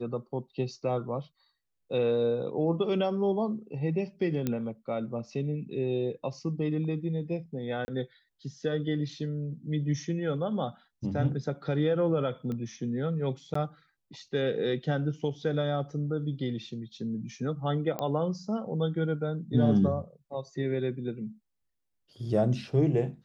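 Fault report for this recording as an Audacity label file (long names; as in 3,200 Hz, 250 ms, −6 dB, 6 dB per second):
4.470000	4.470000	click −16 dBFS
7.850000	7.880000	drop-out 30 ms
12.520000	12.520000	click −25 dBFS
13.540000	13.550000	drop-out 14 ms
17.990000	17.990000	click −19 dBFS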